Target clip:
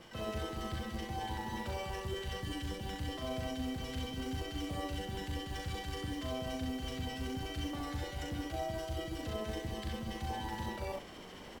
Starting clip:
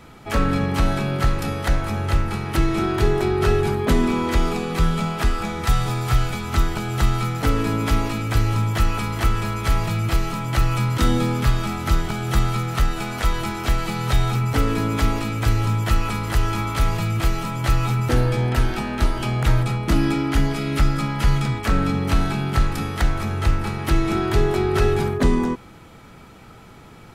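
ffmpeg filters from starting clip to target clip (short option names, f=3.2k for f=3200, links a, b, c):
-filter_complex "[0:a]lowpass=f=2.1k:p=1,bandreject=f=60:t=h:w=6,bandreject=f=120:t=h:w=6,bandreject=f=180:t=h:w=6,bandreject=f=240:t=h:w=6,bandreject=f=300:t=h:w=6,bandreject=f=360:t=h:w=6,bandreject=f=420:t=h:w=6,areverse,acompressor=threshold=-35dB:ratio=4,areverse,acrossover=split=490[a][b];[a]aeval=exprs='val(0)*(1-0.7/2+0.7/2*cos(2*PI*5.8*n/s))':c=same[c];[b]aeval=exprs='val(0)*(1-0.7/2-0.7/2*cos(2*PI*5.8*n/s))':c=same[d];[c][d]amix=inputs=2:normalize=0,aresample=16000,acrusher=bits=5:mode=log:mix=0:aa=0.000001,aresample=44100,aecho=1:1:90.38|151.6:0.708|0.562,asetrate=103194,aresample=44100,volume=-3.5dB"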